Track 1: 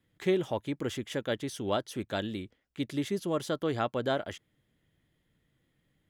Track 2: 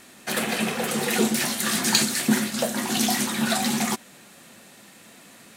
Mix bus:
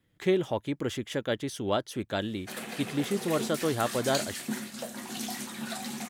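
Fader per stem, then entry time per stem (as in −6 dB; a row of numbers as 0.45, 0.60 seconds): +2.0, −13.0 decibels; 0.00, 2.20 seconds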